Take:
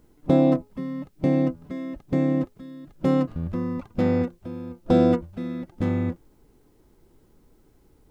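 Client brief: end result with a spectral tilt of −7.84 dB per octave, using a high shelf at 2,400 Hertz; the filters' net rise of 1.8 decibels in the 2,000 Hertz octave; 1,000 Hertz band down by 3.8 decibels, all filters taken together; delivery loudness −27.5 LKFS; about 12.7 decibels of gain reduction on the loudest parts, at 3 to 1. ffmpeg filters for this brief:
ffmpeg -i in.wav -af "equalizer=frequency=1000:width_type=o:gain=-6,equalizer=frequency=2000:width_type=o:gain=6.5,highshelf=frequency=2400:gain=-6.5,acompressor=threshold=-32dB:ratio=3,volume=7.5dB" out.wav

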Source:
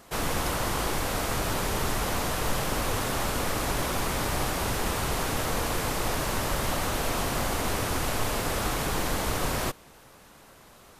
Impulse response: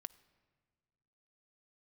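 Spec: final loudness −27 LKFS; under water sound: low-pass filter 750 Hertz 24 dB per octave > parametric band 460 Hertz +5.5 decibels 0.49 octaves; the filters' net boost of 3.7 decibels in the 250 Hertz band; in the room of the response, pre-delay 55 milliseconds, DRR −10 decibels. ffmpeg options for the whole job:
-filter_complex "[0:a]equalizer=frequency=250:width_type=o:gain=4,asplit=2[link_01][link_02];[1:a]atrim=start_sample=2205,adelay=55[link_03];[link_02][link_03]afir=irnorm=-1:irlink=0,volume=15.5dB[link_04];[link_01][link_04]amix=inputs=2:normalize=0,lowpass=frequency=750:width=0.5412,lowpass=frequency=750:width=1.3066,equalizer=frequency=460:width_type=o:width=0.49:gain=5.5,volume=-7.5dB"

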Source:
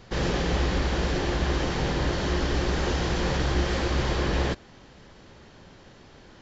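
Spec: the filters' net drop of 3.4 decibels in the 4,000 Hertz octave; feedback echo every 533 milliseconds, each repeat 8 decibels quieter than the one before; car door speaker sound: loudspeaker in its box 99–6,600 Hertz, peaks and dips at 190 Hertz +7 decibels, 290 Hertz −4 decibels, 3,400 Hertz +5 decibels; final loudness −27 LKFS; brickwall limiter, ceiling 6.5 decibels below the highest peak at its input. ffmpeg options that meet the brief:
ffmpeg -i in.wav -af "equalizer=frequency=4000:width_type=o:gain=-8,alimiter=limit=-19.5dB:level=0:latency=1,highpass=99,equalizer=frequency=190:width_type=q:width=4:gain=7,equalizer=frequency=290:width_type=q:width=4:gain=-4,equalizer=frequency=3400:width_type=q:width=4:gain=5,lowpass=frequency=6600:width=0.5412,lowpass=frequency=6600:width=1.3066,aecho=1:1:533|1066|1599|2132|2665:0.398|0.159|0.0637|0.0255|0.0102,volume=3dB" out.wav

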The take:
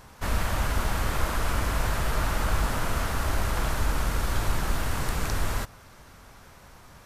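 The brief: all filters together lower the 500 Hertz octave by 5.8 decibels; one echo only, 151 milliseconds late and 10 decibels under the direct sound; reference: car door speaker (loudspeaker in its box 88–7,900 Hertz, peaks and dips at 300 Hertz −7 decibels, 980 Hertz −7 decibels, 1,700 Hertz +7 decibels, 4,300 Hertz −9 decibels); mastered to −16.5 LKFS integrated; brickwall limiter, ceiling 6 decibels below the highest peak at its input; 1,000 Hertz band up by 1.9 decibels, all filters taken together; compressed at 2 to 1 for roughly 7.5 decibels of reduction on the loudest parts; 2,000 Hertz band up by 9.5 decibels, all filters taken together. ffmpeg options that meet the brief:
ffmpeg -i in.wav -af "equalizer=frequency=500:width_type=o:gain=-9,equalizer=frequency=1000:width_type=o:gain=5,equalizer=frequency=2000:width_type=o:gain=6,acompressor=threshold=-33dB:ratio=2,alimiter=level_in=0.5dB:limit=-24dB:level=0:latency=1,volume=-0.5dB,highpass=88,equalizer=frequency=300:width_type=q:width=4:gain=-7,equalizer=frequency=980:width_type=q:width=4:gain=-7,equalizer=frequency=1700:width_type=q:width=4:gain=7,equalizer=frequency=4300:width_type=q:width=4:gain=-9,lowpass=frequency=7900:width=0.5412,lowpass=frequency=7900:width=1.3066,aecho=1:1:151:0.316,volume=18.5dB" out.wav

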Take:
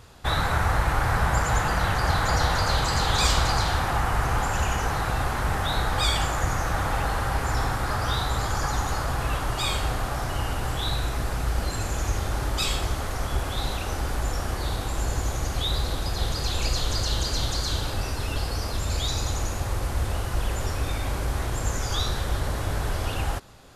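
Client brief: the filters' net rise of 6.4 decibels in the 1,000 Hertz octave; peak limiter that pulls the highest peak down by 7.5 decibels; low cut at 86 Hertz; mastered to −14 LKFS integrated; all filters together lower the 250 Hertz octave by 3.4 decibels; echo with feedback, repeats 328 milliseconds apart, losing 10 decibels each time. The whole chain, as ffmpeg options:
ffmpeg -i in.wav -af "highpass=86,equalizer=frequency=250:width_type=o:gain=-5.5,equalizer=frequency=1000:width_type=o:gain=8.5,alimiter=limit=-15dB:level=0:latency=1,aecho=1:1:328|656|984|1312:0.316|0.101|0.0324|0.0104,volume=11.5dB" out.wav

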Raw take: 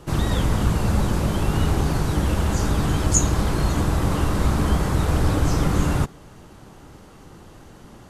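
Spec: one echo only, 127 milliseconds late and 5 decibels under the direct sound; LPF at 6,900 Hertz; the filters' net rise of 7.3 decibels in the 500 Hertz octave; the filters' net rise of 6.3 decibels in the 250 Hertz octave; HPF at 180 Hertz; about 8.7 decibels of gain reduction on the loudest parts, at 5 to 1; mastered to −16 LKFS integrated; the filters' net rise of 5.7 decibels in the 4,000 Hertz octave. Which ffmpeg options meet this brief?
ffmpeg -i in.wav -af "highpass=180,lowpass=6900,equalizer=frequency=250:width_type=o:gain=8.5,equalizer=frequency=500:width_type=o:gain=6.5,equalizer=frequency=4000:width_type=o:gain=7.5,acompressor=threshold=-24dB:ratio=5,aecho=1:1:127:0.562,volume=10.5dB" out.wav

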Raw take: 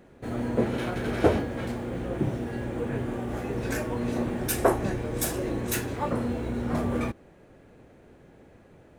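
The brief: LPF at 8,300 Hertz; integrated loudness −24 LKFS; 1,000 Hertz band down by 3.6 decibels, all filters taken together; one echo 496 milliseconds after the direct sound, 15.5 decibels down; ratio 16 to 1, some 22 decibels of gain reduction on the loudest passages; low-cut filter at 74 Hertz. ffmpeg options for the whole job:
ffmpeg -i in.wav -af "highpass=74,lowpass=8300,equalizer=frequency=1000:width_type=o:gain=-5,acompressor=threshold=-39dB:ratio=16,aecho=1:1:496:0.168,volume=20dB" out.wav

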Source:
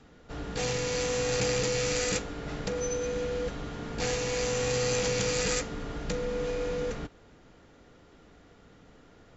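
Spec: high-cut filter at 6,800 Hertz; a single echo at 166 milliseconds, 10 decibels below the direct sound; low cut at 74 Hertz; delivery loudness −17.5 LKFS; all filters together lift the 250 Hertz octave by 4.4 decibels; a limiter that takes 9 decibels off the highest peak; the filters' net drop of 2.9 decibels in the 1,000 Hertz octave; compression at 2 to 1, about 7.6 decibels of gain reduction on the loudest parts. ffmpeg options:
ffmpeg -i in.wav -af "highpass=74,lowpass=6800,equalizer=frequency=250:width_type=o:gain=6,equalizer=frequency=1000:width_type=o:gain=-4.5,acompressor=threshold=-39dB:ratio=2,alimiter=level_in=6dB:limit=-24dB:level=0:latency=1,volume=-6dB,aecho=1:1:166:0.316,volume=21.5dB" out.wav

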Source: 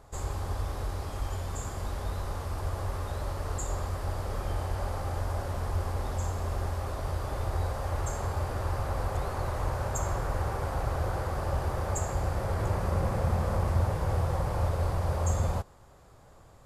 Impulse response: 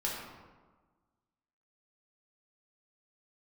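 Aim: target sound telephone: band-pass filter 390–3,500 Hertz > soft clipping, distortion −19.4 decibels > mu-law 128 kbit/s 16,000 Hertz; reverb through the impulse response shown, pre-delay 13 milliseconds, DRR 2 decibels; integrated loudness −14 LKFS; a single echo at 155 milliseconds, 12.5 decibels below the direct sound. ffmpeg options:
-filter_complex "[0:a]aecho=1:1:155:0.237,asplit=2[link_01][link_02];[1:a]atrim=start_sample=2205,adelay=13[link_03];[link_02][link_03]afir=irnorm=-1:irlink=0,volume=-7dB[link_04];[link_01][link_04]amix=inputs=2:normalize=0,highpass=390,lowpass=3500,asoftclip=threshold=-27dB,volume=23dB" -ar 16000 -c:a pcm_mulaw

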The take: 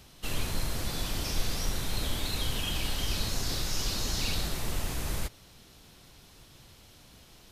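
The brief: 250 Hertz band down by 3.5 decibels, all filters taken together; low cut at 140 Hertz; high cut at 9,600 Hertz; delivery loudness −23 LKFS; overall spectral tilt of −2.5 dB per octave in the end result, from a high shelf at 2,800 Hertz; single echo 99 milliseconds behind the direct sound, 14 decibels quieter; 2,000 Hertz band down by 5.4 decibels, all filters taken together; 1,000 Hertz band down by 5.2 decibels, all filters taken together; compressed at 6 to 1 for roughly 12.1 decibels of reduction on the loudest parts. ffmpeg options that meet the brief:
ffmpeg -i in.wav -af "highpass=140,lowpass=9600,equalizer=frequency=250:width_type=o:gain=-3.5,equalizer=frequency=1000:width_type=o:gain=-5,equalizer=frequency=2000:width_type=o:gain=-9,highshelf=frequency=2800:gain=5.5,acompressor=threshold=-43dB:ratio=6,aecho=1:1:99:0.2,volume=21dB" out.wav

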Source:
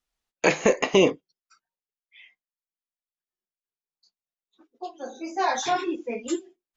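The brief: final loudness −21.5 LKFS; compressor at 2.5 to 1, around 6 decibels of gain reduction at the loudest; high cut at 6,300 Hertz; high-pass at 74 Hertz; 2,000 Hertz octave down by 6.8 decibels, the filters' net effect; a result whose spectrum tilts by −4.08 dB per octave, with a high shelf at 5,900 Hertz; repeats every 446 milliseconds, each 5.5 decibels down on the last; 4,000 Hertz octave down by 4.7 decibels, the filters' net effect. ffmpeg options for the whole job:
ffmpeg -i in.wav -af "highpass=74,lowpass=6300,equalizer=frequency=2000:width_type=o:gain=-8.5,equalizer=frequency=4000:width_type=o:gain=-4.5,highshelf=frequency=5900:gain=7.5,acompressor=threshold=-23dB:ratio=2.5,aecho=1:1:446|892|1338|1784|2230|2676|3122:0.531|0.281|0.149|0.079|0.0419|0.0222|0.0118,volume=9dB" out.wav

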